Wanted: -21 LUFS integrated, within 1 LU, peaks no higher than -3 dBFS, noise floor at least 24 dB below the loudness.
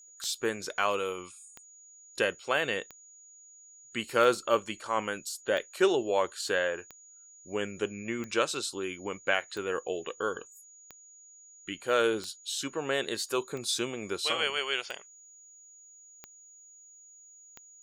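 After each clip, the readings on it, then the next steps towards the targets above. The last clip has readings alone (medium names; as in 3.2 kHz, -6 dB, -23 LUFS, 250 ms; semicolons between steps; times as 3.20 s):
clicks found 14; steady tone 6.8 kHz; tone level -52 dBFS; loudness -31.0 LUFS; peak level -10.5 dBFS; loudness target -21.0 LUFS
-> de-click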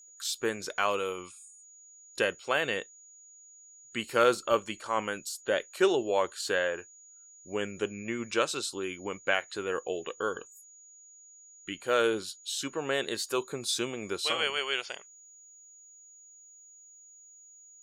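clicks found 0; steady tone 6.8 kHz; tone level -52 dBFS
-> band-stop 6.8 kHz, Q 30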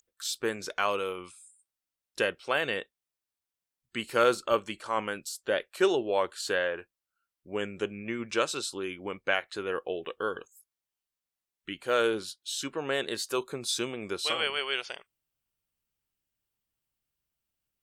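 steady tone not found; loudness -30.5 LUFS; peak level -10.5 dBFS; loudness target -21.0 LUFS
-> trim +9.5 dB; peak limiter -3 dBFS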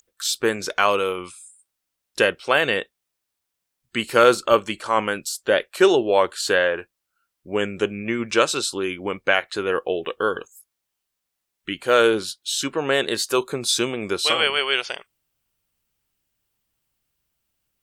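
loudness -21.5 LUFS; peak level -3.0 dBFS; noise floor -81 dBFS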